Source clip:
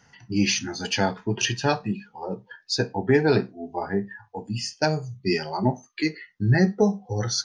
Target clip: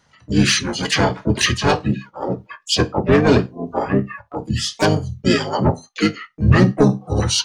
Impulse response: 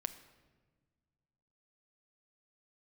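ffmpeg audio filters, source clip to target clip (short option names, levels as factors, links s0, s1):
-filter_complex "[0:a]aeval=exprs='0.473*sin(PI/2*1.58*val(0)/0.473)':c=same,agate=range=0.355:threshold=0.0178:ratio=16:detection=peak,asplit=4[s0][s1][s2][s3];[s1]asetrate=29433,aresample=44100,atempo=1.49831,volume=0.794[s4];[s2]asetrate=52444,aresample=44100,atempo=0.840896,volume=0.178[s5];[s3]asetrate=66075,aresample=44100,atempo=0.66742,volume=0.316[s6];[s0][s4][s5][s6]amix=inputs=4:normalize=0,volume=0.794"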